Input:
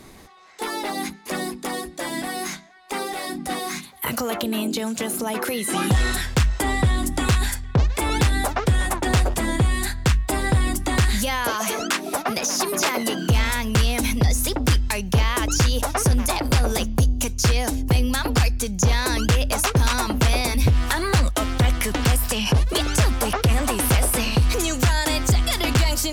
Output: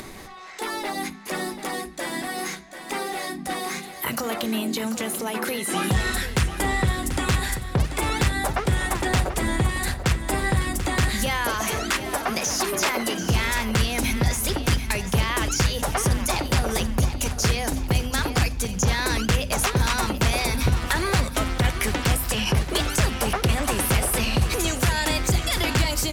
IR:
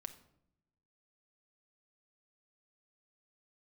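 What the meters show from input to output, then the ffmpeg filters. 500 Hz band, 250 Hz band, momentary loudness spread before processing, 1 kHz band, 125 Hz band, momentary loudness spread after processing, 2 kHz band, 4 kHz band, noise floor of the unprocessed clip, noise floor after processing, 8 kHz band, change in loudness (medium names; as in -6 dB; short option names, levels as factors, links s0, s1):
-1.5 dB, -2.5 dB, 8 LU, -1.0 dB, -3.5 dB, 7 LU, 0.0 dB, -1.0 dB, -40 dBFS, -38 dBFS, -1.5 dB, -2.0 dB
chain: -filter_complex "[0:a]equalizer=f=2000:w=1.5:g=2.5,bandreject=f=50:t=h:w=6,bandreject=f=100:t=h:w=6,bandreject=f=150:t=h:w=6,bandreject=f=200:t=h:w=6,bandreject=f=250:t=h:w=6,asplit=2[s0][s1];[1:a]atrim=start_sample=2205,afade=t=out:st=0.17:d=0.01,atrim=end_sample=7938[s2];[s1][s2]afir=irnorm=-1:irlink=0,volume=1.26[s3];[s0][s3]amix=inputs=2:normalize=0,acompressor=mode=upward:threshold=0.0631:ratio=2.5,aecho=1:1:738|1476|2214|2952|3690:0.282|0.13|0.0596|0.0274|0.0126,volume=0.447"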